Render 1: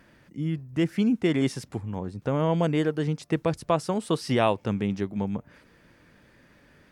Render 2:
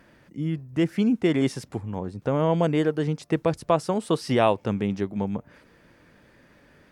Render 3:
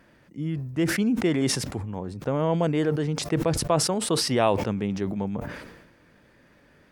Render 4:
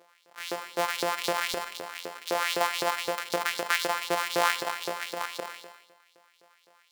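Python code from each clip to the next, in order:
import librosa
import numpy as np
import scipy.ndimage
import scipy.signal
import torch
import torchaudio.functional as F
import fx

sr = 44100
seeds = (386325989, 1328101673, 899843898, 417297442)

y1 = fx.peak_eq(x, sr, hz=580.0, db=3.0, octaves=2.2)
y2 = fx.sustainer(y1, sr, db_per_s=51.0)
y2 = y2 * 10.0 ** (-2.0 / 20.0)
y3 = np.r_[np.sort(y2[:len(y2) // 256 * 256].reshape(-1, 256), axis=1).ravel(), y2[len(y2) // 256 * 256:]]
y3 = fx.filter_lfo_highpass(y3, sr, shape='saw_up', hz=3.9, low_hz=420.0, high_hz=4800.0, q=2.6)
y3 = fx.rev_schroeder(y3, sr, rt60_s=0.85, comb_ms=30, drr_db=13.5)
y3 = y3 * 10.0 ** (-2.5 / 20.0)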